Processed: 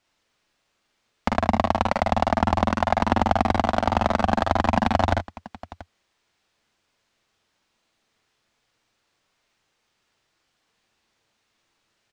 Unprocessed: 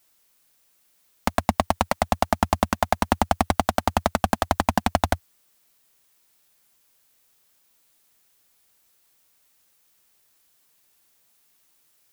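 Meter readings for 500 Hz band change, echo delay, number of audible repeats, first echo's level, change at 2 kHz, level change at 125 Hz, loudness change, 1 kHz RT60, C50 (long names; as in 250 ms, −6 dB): +2.0 dB, 44 ms, 3, −4.5 dB, +1.0 dB, +2.5 dB, +1.5 dB, no reverb audible, no reverb audible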